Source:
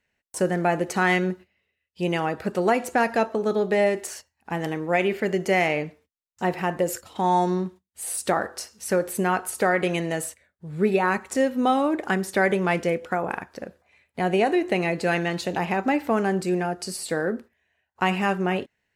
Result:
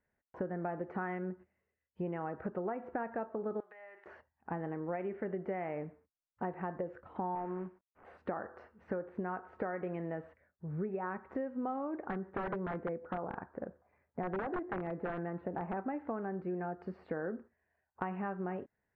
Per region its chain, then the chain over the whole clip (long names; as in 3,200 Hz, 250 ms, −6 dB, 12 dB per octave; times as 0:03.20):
0:03.60–0:04.06: high-pass filter 1,500 Hz + downward compressor 10 to 1, threshold −40 dBFS
0:07.35–0:08.05: variable-slope delta modulation 16 kbit/s + parametric band 78 Hz −8.5 dB 2.9 octaves
0:12.06–0:15.77: low-pass filter 1,800 Hz + wrap-around overflow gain 15.5 dB
whole clip: low-pass filter 1,600 Hz 24 dB per octave; downward compressor 6 to 1, threshold −31 dBFS; level −4 dB